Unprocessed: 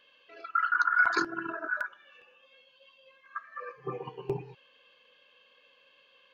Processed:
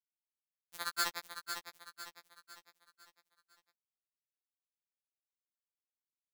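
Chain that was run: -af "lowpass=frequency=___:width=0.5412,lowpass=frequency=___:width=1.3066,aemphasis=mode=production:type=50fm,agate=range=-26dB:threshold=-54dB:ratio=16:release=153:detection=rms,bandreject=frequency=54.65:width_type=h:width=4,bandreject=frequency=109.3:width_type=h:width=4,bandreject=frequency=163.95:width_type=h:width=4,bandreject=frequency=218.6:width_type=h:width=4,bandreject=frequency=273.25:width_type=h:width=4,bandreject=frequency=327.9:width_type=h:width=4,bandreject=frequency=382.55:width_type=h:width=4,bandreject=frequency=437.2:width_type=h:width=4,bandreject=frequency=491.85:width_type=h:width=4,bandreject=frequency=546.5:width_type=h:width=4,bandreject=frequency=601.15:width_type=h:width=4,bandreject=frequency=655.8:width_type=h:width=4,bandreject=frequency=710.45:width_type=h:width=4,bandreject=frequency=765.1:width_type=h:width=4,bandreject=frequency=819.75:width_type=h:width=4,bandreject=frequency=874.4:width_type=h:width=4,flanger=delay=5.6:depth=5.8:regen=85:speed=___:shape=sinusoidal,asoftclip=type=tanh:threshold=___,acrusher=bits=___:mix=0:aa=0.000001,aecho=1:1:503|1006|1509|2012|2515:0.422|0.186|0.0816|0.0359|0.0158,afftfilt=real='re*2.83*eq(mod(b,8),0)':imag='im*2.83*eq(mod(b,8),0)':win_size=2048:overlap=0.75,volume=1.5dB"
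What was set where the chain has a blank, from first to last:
2200, 2200, 0.73, -20.5dB, 3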